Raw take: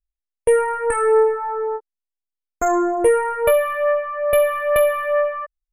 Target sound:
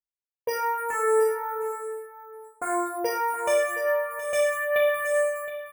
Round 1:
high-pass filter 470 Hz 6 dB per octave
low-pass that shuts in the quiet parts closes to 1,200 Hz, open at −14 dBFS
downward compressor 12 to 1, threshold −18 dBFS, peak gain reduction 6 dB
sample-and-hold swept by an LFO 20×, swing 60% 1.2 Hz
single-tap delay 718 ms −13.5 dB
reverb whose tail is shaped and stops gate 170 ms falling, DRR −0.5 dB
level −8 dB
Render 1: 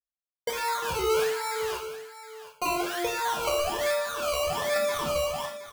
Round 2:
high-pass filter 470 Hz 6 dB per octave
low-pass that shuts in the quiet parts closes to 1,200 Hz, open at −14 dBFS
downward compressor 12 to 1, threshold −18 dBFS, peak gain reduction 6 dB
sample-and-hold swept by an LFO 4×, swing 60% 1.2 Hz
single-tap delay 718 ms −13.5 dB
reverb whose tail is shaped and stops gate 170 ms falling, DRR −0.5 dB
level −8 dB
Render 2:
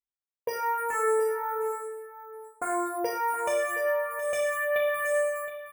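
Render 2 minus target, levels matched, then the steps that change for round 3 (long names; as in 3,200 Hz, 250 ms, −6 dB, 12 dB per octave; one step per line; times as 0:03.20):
downward compressor: peak gain reduction +6 dB
remove: downward compressor 12 to 1, threshold −18 dBFS, peak gain reduction 6 dB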